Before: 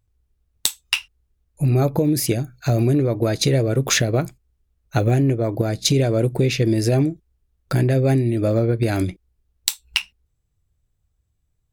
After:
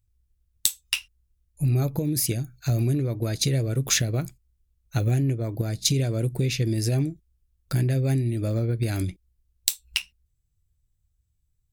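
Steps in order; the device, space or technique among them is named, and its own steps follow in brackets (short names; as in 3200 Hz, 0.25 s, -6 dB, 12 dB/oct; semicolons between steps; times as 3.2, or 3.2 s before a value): smiley-face EQ (low shelf 140 Hz +5 dB; bell 650 Hz -7 dB 2.6 oct; high shelf 5500 Hz +6.5 dB); gain -5.5 dB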